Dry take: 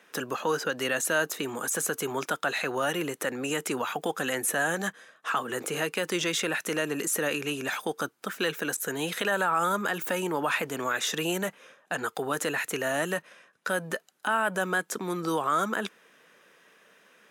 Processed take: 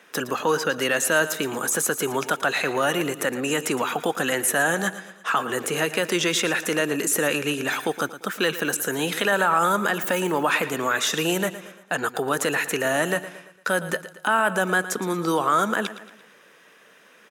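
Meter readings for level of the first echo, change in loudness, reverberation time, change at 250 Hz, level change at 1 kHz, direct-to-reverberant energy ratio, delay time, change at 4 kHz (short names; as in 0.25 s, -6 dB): -14.0 dB, +5.5 dB, none, +6.0 dB, +5.5 dB, none, 0.114 s, +5.5 dB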